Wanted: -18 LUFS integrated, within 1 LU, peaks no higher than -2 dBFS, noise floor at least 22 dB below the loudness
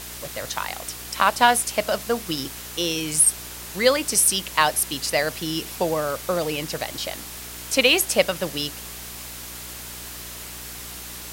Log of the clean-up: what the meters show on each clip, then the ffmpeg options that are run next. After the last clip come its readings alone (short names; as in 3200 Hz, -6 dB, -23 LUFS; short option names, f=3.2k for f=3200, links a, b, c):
hum 60 Hz; harmonics up to 420 Hz; hum level -43 dBFS; noise floor -37 dBFS; noise floor target -44 dBFS; loudness -22.0 LUFS; peak -2.0 dBFS; loudness target -18.0 LUFS
-> -af "bandreject=f=60:t=h:w=4,bandreject=f=120:t=h:w=4,bandreject=f=180:t=h:w=4,bandreject=f=240:t=h:w=4,bandreject=f=300:t=h:w=4,bandreject=f=360:t=h:w=4,bandreject=f=420:t=h:w=4"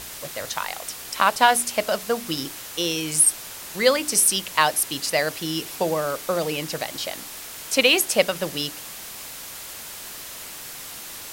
hum none; noise floor -38 dBFS; noise floor target -44 dBFS
-> -af "afftdn=nr=6:nf=-38"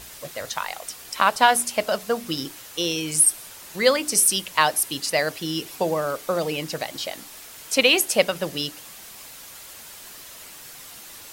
noise floor -43 dBFS; noise floor target -44 dBFS
-> -af "afftdn=nr=6:nf=-43"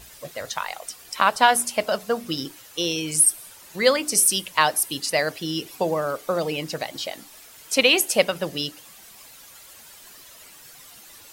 noise floor -47 dBFS; loudness -22.0 LUFS; peak -2.0 dBFS; loudness target -18.0 LUFS
-> -af "volume=4dB,alimiter=limit=-2dB:level=0:latency=1"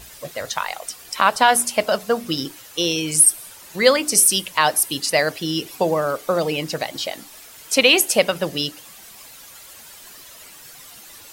loudness -18.5 LUFS; peak -2.0 dBFS; noise floor -43 dBFS